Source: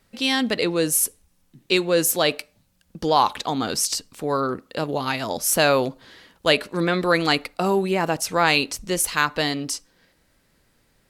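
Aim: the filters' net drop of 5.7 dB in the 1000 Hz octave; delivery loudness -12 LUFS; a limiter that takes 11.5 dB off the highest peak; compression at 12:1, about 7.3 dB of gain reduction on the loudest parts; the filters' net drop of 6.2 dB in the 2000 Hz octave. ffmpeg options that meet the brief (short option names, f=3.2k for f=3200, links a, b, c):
-af "equalizer=f=1k:t=o:g=-6,equalizer=f=2k:t=o:g=-6.5,acompressor=threshold=-23dB:ratio=12,volume=21.5dB,alimiter=limit=-2dB:level=0:latency=1"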